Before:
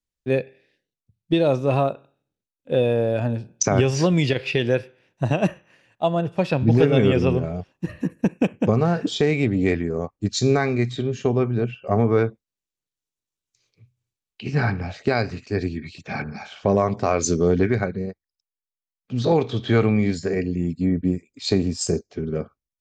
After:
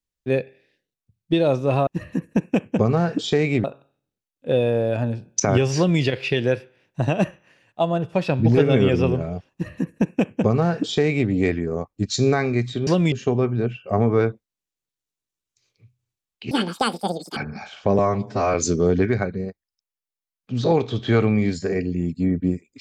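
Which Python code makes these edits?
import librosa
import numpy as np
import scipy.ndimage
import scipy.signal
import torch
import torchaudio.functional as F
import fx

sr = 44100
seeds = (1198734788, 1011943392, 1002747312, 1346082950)

y = fx.edit(x, sr, fx.duplicate(start_s=3.99, length_s=0.25, to_s=11.1),
    fx.duplicate(start_s=7.75, length_s=1.77, to_s=1.87),
    fx.speed_span(start_s=14.49, length_s=1.67, speed=1.95),
    fx.stretch_span(start_s=16.78, length_s=0.37, factor=1.5), tone=tone)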